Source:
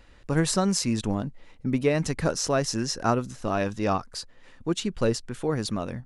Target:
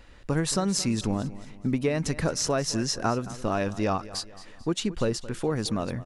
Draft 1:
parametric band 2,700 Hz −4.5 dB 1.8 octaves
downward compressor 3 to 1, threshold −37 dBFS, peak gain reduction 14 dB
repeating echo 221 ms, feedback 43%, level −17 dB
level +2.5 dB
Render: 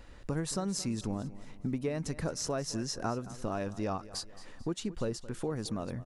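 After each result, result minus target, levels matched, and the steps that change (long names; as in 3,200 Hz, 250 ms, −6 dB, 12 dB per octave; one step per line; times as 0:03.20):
downward compressor: peak gain reduction +7.5 dB; 2,000 Hz band −2.5 dB
change: downward compressor 3 to 1, threshold −25.5 dBFS, peak gain reduction 6.5 dB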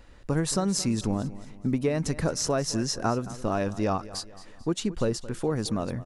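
2,000 Hz band −2.5 dB
remove: parametric band 2,700 Hz −4.5 dB 1.8 octaves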